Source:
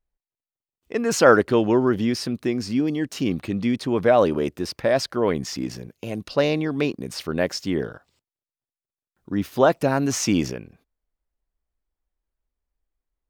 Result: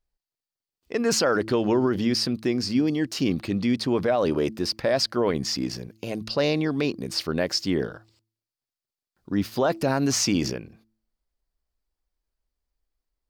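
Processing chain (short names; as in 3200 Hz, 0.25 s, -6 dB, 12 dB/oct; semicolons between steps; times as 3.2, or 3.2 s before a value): bell 4700 Hz +8 dB 0.44 oct; de-hum 110.1 Hz, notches 3; limiter -13.5 dBFS, peak gain reduction 10.5 dB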